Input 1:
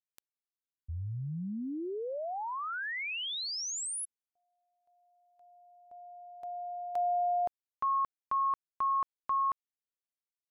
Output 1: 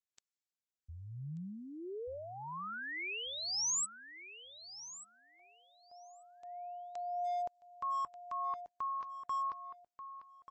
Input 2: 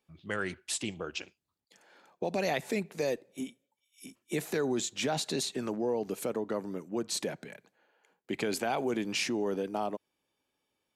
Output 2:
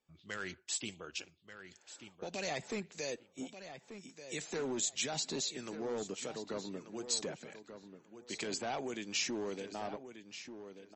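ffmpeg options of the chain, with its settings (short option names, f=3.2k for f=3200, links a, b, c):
-filter_complex "[0:a]acrossover=split=1600[a][b];[a]aeval=exprs='val(0)*(1-0.5/2+0.5/2*cos(2*PI*1.5*n/s))':c=same[c];[b]aeval=exprs='val(0)*(1-0.5/2-0.5/2*cos(2*PI*1.5*n/s))':c=same[d];[c][d]amix=inputs=2:normalize=0,asoftclip=type=hard:threshold=-27.5dB,crystalizer=i=2.5:c=0,asplit=2[e][f];[f]adelay=1186,lowpass=f=4.5k:p=1,volume=-10.5dB,asplit=2[g][h];[h]adelay=1186,lowpass=f=4.5k:p=1,volume=0.22,asplit=2[i][j];[j]adelay=1186,lowpass=f=4.5k:p=1,volume=0.22[k];[e][g][i][k]amix=inputs=4:normalize=0,volume=-5dB" -ar 32000 -c:a libmp3lame -b:a 32k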